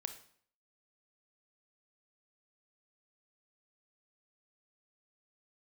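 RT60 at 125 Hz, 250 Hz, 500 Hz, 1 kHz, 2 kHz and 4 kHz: 0.60 s, 0.60 s, 0.55 s, 0.55 s, 0.55 s, 0.50 s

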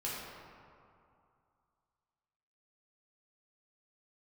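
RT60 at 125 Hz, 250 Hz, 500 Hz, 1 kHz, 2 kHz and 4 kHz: 2.6 s, 2.4 s, 2.3 s, 2.7 s, 1.9 s, 1.2 s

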